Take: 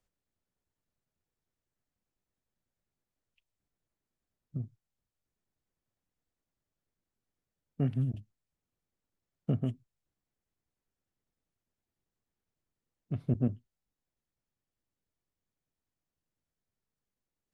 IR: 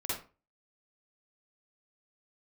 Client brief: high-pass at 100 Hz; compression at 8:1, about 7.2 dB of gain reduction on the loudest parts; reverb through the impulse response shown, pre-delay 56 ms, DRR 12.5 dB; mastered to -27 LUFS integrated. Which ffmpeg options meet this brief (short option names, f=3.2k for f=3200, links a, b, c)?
-filter_complex "[0:a]highpass=100,acompressor=threshold=-32dB:ratio=8,asplit=2[a][b];[1:a]atrim=start_sample=2205,adelay=56[c];[b][c]afir=irnorm=-1:irlink=0,volume=-16.5dB[d];[a][d]amix=inputs=2:normalize=0,volume=14dB"